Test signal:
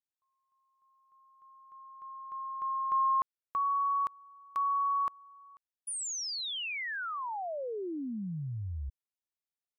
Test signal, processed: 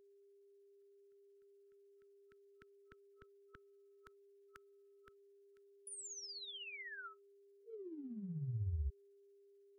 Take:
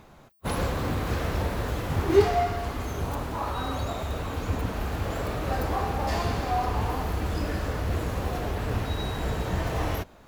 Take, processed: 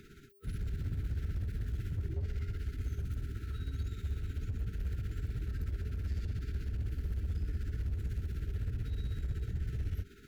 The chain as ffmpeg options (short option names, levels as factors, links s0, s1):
-filter_complex "[0:a]afftfilt=real='re*(1-between(b*sr/4096,460,1300))':imag='im*(1-between(b*sr/4096,460,1300))':win_size=4096:overlap=0.75,acrossover=split=130[s0][s1];[s1]acompressor=threshold=0.00447:ratio=8:attack=0.16:release=44:knee=1:detection=rms[s2];[s0][s2]amix=inputs=2:normalize=0,alimiter=level_in=1.5:limit=0.0631:level=0:latency=1:release=17,volume=0.668,asoftclip=type=hard:threshold=0.0335,tremolo=f=16:d=0.52,aeval=exprs='val(0)+0.000562*sin(2*PI*400*n/s)':c=same,volume=1.12"